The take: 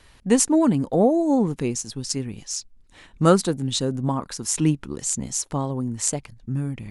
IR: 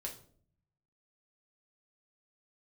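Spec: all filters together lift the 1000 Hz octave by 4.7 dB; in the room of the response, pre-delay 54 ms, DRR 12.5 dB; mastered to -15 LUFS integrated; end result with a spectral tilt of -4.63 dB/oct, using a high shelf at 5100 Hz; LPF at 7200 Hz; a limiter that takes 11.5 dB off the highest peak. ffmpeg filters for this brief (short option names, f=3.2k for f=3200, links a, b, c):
-filter_complex "[0:a]lowpass=7.2k,equalizer=f=1k:t=o:g=6,highshelf=f=5.1k:g=8.5,alimiter=limit=-12dB:level=0:latency=1,asplit=2[a][b];[1:a]atrim=start_sample=2205,adelay=54[c];[b][c]afir=irnorm=-1:irlink=0,volume=-11dB[d];[a][d]amix=inputs=2:normalize=0,volume=9dB"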